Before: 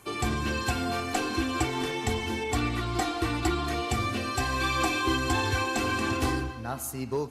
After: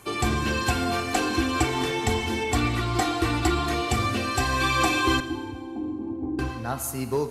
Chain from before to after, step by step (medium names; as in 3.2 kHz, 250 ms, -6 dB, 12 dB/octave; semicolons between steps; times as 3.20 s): 5.20–6.39 s: cascade formant filter u; Schroeder reverb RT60 1.6 s, combs from 26 ms, DRR 12.5 dB; trim +4 dB